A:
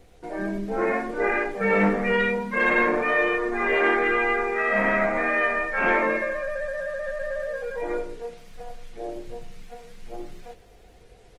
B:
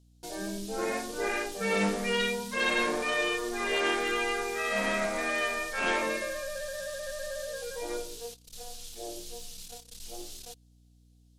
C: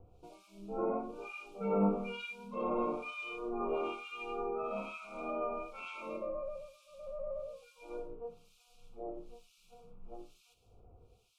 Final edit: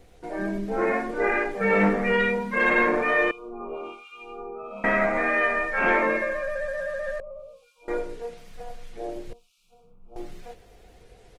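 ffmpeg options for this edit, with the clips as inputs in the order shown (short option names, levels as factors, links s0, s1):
-filter_complex "[2:a]asplit=3[s0][s1][s2];[0:a]asplit=4[s3][s4][s5][s6];[s3]atrim=end=3.312[s7];[s0]atrim=start=3.308:end=4.842[s8];[s4]atrim=start=4.838:end=7.202[s9];[s1]atrim=start=7.198:end=7.882[s10];[s5]atrim=start=7.878:end=9.332[s11];[s2]atrim=start=9.328:end=10.162[s12];[s6]atrim=start=10.158[s13];[s7][s8]acrossfade=d=0.004:c1=hsin:c2=hsin[s14];[s14][s9]acrossfade=d=0.004:c1=hsin:c2=hsin[s15];[s15][s10]acrossfade=d=0.004:c1=hsin:c2=hsin[s16];[s16][s11]acrossfade=d=0.004:c1=hsin:c2=hsin[s17];[s17][s12]acrossfade=d=0.004:c1=hsin:c2=hsin[s18];[s18][s13]acrossfade=d=0.004:c1=hsin:c2=hsin"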